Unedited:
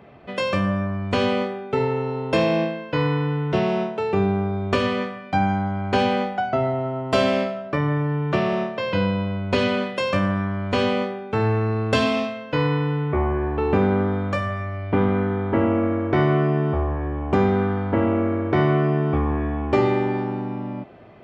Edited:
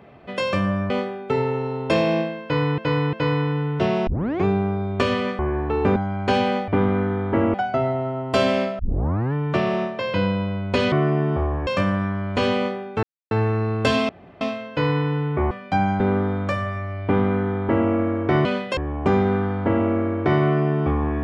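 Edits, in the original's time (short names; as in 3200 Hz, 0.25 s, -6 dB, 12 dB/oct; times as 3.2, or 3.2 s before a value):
0.9–1.33 cut
2.86–3.21 loop, 3 plays
3.8 tape start 0.37 s
5.12–5.61 swap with 13.27–13.84
7.58 tape start 0.54 s
9.71–10.03 swap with 16.29–17.04
11.39 insert silence 0.28 s
12.17 insert room tone 0.32 s
14.88–15.74 copy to 6.33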